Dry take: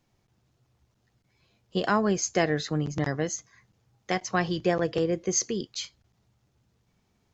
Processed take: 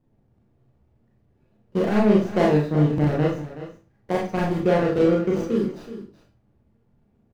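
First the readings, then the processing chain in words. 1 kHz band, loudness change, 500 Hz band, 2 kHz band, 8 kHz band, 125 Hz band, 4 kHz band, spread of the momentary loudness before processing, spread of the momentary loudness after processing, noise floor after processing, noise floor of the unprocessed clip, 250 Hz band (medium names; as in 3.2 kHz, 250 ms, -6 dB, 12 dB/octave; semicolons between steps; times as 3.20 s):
+2.5 dB, +6.0 dB, +7.0 dB, -1.0 dB, no reading, +8.5 dB, -5.0 dB, 9 LU, 18 LU, -65 dBFS, -72 dBFS, +8.5 dB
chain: median filter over 41 samples; treble shelf 3.5 kHz -9.5 dB; delay 373 ms -13.5 dB; Schroeder reverb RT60 0.35 s, combs from 27 ms, DRR -3 dB; trim +4.5 dB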